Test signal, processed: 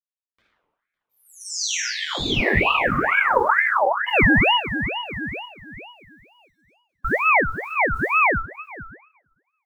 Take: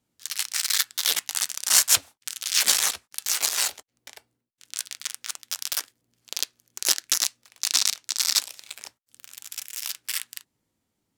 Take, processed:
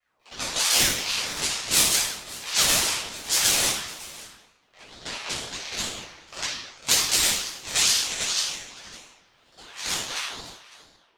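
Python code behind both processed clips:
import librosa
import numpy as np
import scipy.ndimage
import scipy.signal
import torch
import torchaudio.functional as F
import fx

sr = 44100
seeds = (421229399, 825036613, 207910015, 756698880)

y = fx.reverse_delay(x, sr, ms=103, wet_db=-10)
y = scipy.signal.sosfilt(scipy.signal.butter(2, 86.0, 'highpass', fs=sr, output='sos'), y)
y = fx.spec_gate(y, sr, threshold_db=-25, keep='strong')
y = fx.low_shelf(y, sr, hz=200.0, db=-6.5)
y = fx.rider(y, sr, range_db=4, speed_s=0.5)
y = fx.rotary(y, sr, hz=1.1)
y = fx.env_lowpass(y, sr, base_hz=1200.0, full_db=-22.0)
y = fx.quant_companded(y, sr, bits=8)
y = y + 10.0 ** (-19.5 / 20.0) * np.pad(y, (int(555 * sr / 1000.0), 0))[:len(y)]
y = fx.room_shoebox(y, sr, seeds[0], volume_m3=620.0, walls='mixed', distance_m=6.3)
y = fx.ring_lfo(y, sr, carrier_hz=1300.0, swing_pct=50, hz=2.2)
y = y * librosa.db_to_amplitude(-2.5)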